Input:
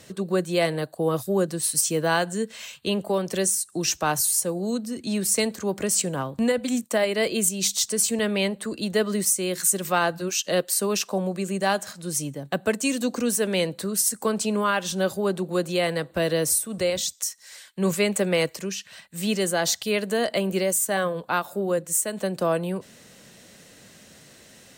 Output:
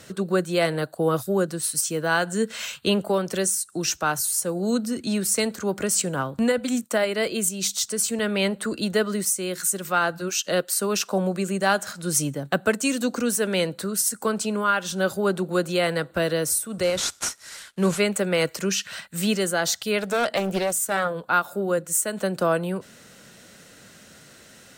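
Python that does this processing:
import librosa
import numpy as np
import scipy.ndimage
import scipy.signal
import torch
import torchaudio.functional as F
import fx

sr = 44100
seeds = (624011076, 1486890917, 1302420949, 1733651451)

y = fx.cvsd(x, sr, bps=64000, at=(16.83, 18.0))
y = fx.doppler_dist(y, sr, depth_ms=0.44, at=(19.99, 21.11))
y = fx.peak_eq(y, sr, hz=1400.0, db=10.0, octaves=0.23)
y = fx.rider(y, sr, range_db=10, speed_s=0.5)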